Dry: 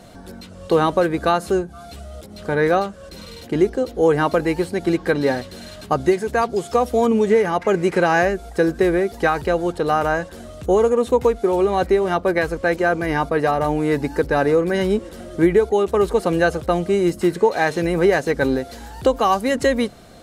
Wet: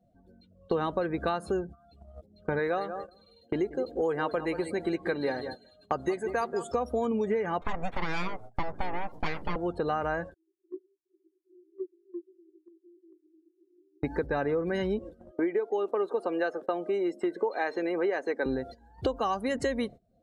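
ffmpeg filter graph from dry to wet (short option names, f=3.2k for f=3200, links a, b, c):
-filter_complex "[0:a]asettb=1/sr,asplit=3[a][b][c];[a]atrim=end=2.594[d];[b]atrim=start=2.59:end=6.72,asetpts=PTS-STARTPTS,afade=t=in:d=0.004:c=qsin,afade=t=out:st=4.126:d=0.004:c=qsin,bass=f=250:g=-7,treble=f=4k:g=3,bandreject=f=5.5k:w=6.1,aecho=1:1:183|366|549:0.224|0.0716|0.0229,atrim=end_sample=182133[e];[c]atrim=start=6.716[f];[d][e]acrossfade=d=0.004:c1=hsin:c2=qsin[g];[g][f]acrossfade=d=0.004:c1=qsin:c2=hsin,asettb=1/sr,asplit=3[h][i][j];[h]atrim=end=7.614[k];[i]atrim=start=7.61:end=9.56,asetpts=PTS-STARTPTS,afade=t=in:d=0.004:c=qsin,afade=t=out:st=1.946:d=0.004:c=qsin,bandreject=f=2.5k:w=7,aeval=exprs='abs(val(0))':c=same[l];[j]atrim=start=9.556[m];[k][l]acrossfade=d=0.004:c1=hsin:c2=qsin[n];[n][m]acrossfade=d=0.004:c1=qsin:c2=hsin,asettb=1/sr,asplit=3[o][p][q];[o]atrim=end=10.344[r];[p]atrim=start=10.34:end=14.03,asetpts=PTS-STARTPTS,afade=t=in:d=0.004:c=qsin,afade=t=out:st=3.686:d=0.004:c=qsin,acompressor=threshold=-16dB:ratio=20:attack=3.2:release=140:knee=1:detection=peak,aeval=exprs='abs(val(0))':c=same,asuperpass=centerf=350:order=20:qfactor=4.2[s];[q]atrim=start=14.026[t];[r][s]acrossfade=d=0.004:c1=hsin:c2=qsin[u];[u][t]acrossfade=d=0.004:c1=qsin:c2=hsin,asettb=1/sr,asplit=3[v][w][x];[v]atrim=end=15.314[y];[w]atrim=start=15.31:end=18.46,asetpts=PTS-STARTPTS,afade=t=in:d=0.004:c=qsin,afade=t=out:st=3.146:d=0.004:c=qsin,highpass=f=280:w=0.5412,highpass=f=280:w=1.3066,highshelf=f=3.4k:g=-4[z];[x]atrim=start=18.456[aa];[y][z]acrossfade=d=0.004:c1=hsin:c2=qsin[ab];[ab][aa]acrossfade=d=0.004:c1=qsin:c2=hsin,afftdn=nr=23:nf=-37,agate=range=-21dB:threshold=-32dB:ratio=16:detection=peak,acompressor=threshold=-32dB:ratio=3,volume=1.5dB"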